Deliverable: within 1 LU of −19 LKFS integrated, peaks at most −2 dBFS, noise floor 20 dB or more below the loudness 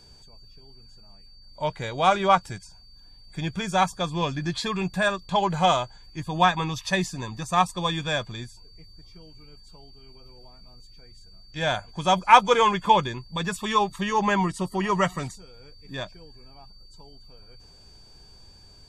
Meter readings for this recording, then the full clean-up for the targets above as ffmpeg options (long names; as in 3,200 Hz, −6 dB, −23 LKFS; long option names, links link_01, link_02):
interfering tone 4,600 Hz; level of the tone −52 dBFS; integrated loudness −24.0 LKFS; sample peak −2.0 dBFS; target loudness −19.0 LKFS
→ -af "bandreject=frequency=4600:width=30"
-af "volume=5dB,alimiter=limit=-2dB:level=0:latency=1"